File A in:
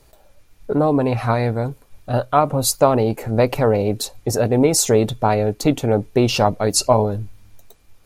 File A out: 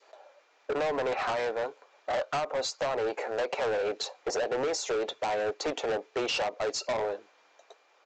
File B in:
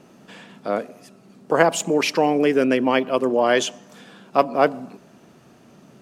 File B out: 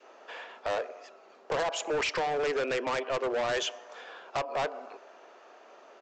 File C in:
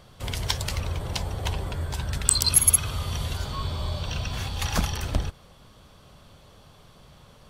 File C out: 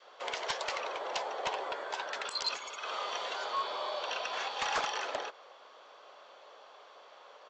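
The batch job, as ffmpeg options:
-filter_complex "[0:a]highpass=f=450:w=0.5412,highpass=f=450:w=1.3066,adynamicequalizer=threshold=0.0224:dfrequency=750:dqfactor=0.9:tfrequency=750:tqfactor=0.9:attack=5:release=100:ratio=0.375:range=3:mode=cutabove:tftype=bell,acompressor=threshold=-21dB:ratio=12,asplit=2[a][b];[b]highpass=f=720:p=1,volume=12dB,asoftclip=type=tanh:threshold=-1dB[c];[a][c]amix=inputs=2:normalize=0,lowpass=f=1.1k:p=1,volume=-6dB,aresample=16000,asoftclip=type=hard:threshold=-26.5dB,aresample=44100"

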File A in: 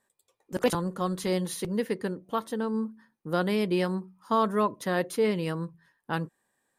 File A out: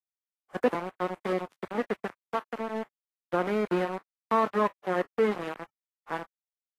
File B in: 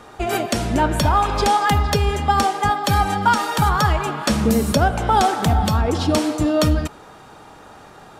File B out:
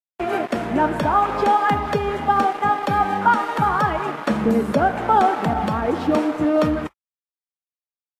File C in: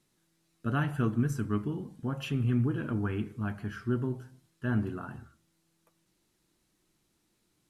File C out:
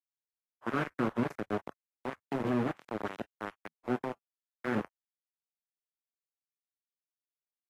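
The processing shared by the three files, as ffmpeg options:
-filter_complex "[0:a]aeval=exprs='val(0)*gte(abs(val(0)),0.0562)':c=same,acrossover=split=160 2400:gain=0.141 1 0.1[a][b][c];[a][b][c]amix=inputs=3:normalize=0,volume=1dB" -ar 48000 -c:a libvorbis -b:a 32k

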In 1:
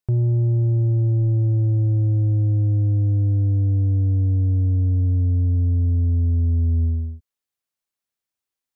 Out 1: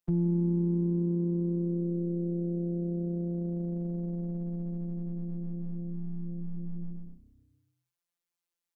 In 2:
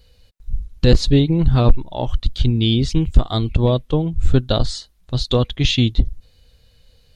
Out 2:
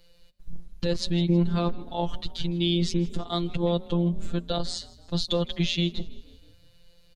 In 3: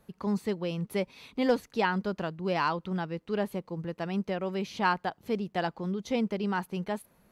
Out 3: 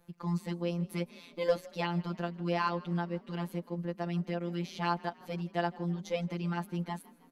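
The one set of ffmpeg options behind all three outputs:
-filter_complex "[0:a]afftfilt=real='hypot(re,im)*cos(PI*b)':imag='0':win_size=1024:overlap=0.75,alimiter=limit=-11.5dB:level=0:latency=1:release=172,acrossover=split=160|3000[a][b][c];[a]acompressor=threshold=-29dB:ratio=2.5[d];[d][b][c]amix=inputs=3:normalize=0,asplit=5[e][f][g][h][i];[f]adelay=160,afreqshift=32,volume=-22dB[j];[g]adelay=320,afreqshift=64,volume=-27.5dB[k];[h]adelay=480,afreqshift=96,volume=-33dB[l];[i]adelay=640,afreqshift=128,volume=-38.5dB[m];[e][j][k][l][m]amix=inputs=5:normalize=0"

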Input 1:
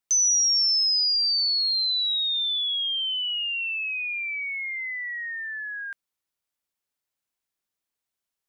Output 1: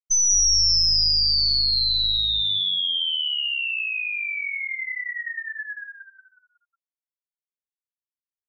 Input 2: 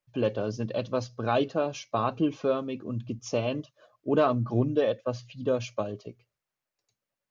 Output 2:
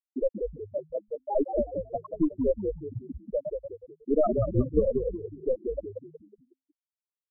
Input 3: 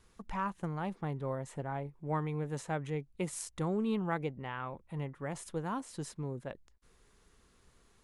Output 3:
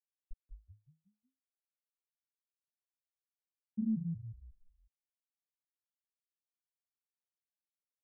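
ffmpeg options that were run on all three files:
-filter_complex "[0:a]aeval=exprs='0.266*(cos(1*acos(clip(val(0)/0.266,-1,1)))-cos(1*PI/2))+0.0376*(cos(4*acos(clip(val(0)/0.266,-1,1)))-cos(4*PI/2))+0.00335*(cos(5*acos(clip(val(0)/0.266,-1,1)))-cos(5*PI/2))+0.00473*(cos(7*acos(clip(val(0)/0.266,-1,1)))-cos(7*PI/2))+0.0075*(cos(8*acos(clip(val(0)/0.266,-1,1)))-cos(8*PI/2))':c=same,asplit=2[a][b];[b]acompressor=threshold=-34dB:ratio=16,volume=1.5dB[c];[a][c]amix=inputs=2:normalize=0,afftfilt=real='re*gte(hypot(re,im),0.501)':imag='im*gte(hypot(re,im),0.501)':win_size=1024:overlap=0.75,asplit=6[d][e][f][g][h][i];[e]adelay=183,afreqshift=-53,volume=-5dB[j];[f]adelay=366,afreqshift=-106,volume=-13.2dB[k];[g]adelay=549,afreqshift=-159,volume=-21.4dB[l];[h]adelay=732,afreqshift=-212,volume=-29.5dB[m];[i]adelay=915,afreqshift=-265,volume=-37.7dB[n];[d][j][k][l][m][n]amix=inputs=6:normalize=0"

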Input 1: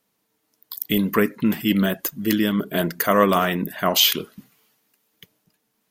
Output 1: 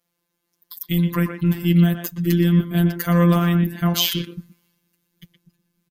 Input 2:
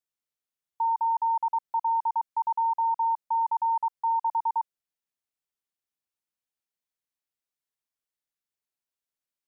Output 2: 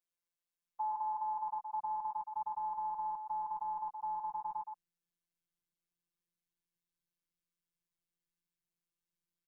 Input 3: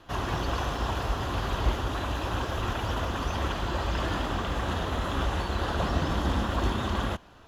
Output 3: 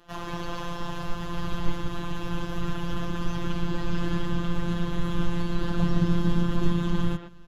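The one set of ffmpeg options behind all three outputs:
-filter_complex "[0:a]afftfilt=real='hypot(re,im)*cos(PI*b)':imag='0':win_size=1024:overlap=0.75,asubboost=boost=8.5:cutoff=210,asplit=2[a][b];[b]adelay=120,highpass=300,lowpass=3.4k,asoftclip=type=hard:threshold=-10dB,volume=-7dB[c];[a][c]amix=inputs=2:normalize=0,volume=-1dB"

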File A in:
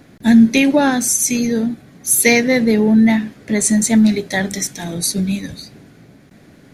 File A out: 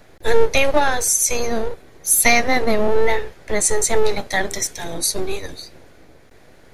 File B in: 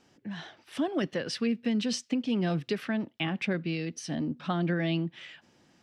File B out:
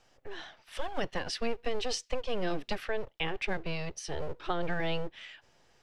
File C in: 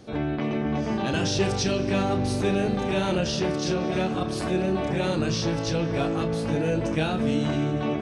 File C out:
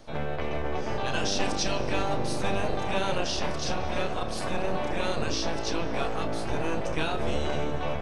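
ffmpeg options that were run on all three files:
-filter_complex "[0:a]equalizer=f=600:t=o:w=0.68:g=3.5,acrossover=split=590|2200[a][b][c];[a]aeval=exprs='abs(val(0))':c=same[d];[d][b][c]amix=inputs=3:normalize=0,volume=-1dB"

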